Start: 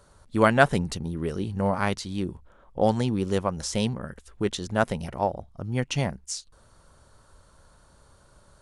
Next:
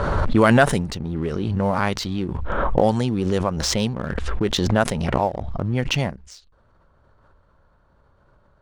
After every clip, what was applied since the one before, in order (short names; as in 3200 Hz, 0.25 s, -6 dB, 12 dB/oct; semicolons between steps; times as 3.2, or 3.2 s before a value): low-pass opened by the level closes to 2000 Hz, open at -17 dBFS; sample leveller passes 1; backwards sustainer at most 22 dB/s; gain -1 dB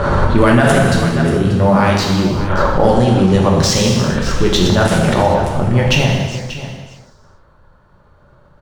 echo 0.586 s -14 dB; non-linear reverb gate 0.47 s falling, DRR -2.5 dB; maximiser +6 dB; gain -1 dB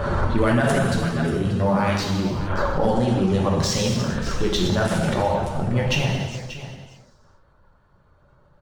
bin magnitudes rounded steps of 15 dB; gain -8 dB